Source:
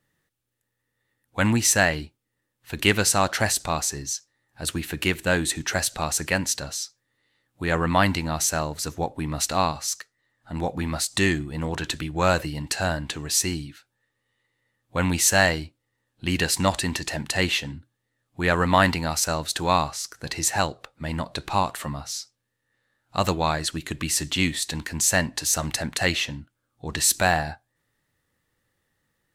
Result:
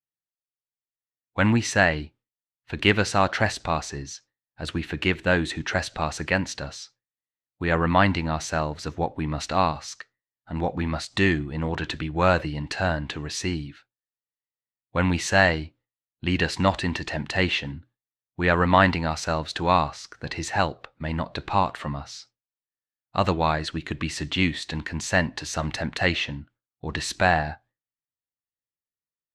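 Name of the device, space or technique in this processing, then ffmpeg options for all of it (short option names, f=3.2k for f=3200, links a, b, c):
hearing-loss simulation: -af "lowpass=3.4k,agate=range=-33dB:threshold=-49dB:ratio=3:detection=peak,volume=1dB"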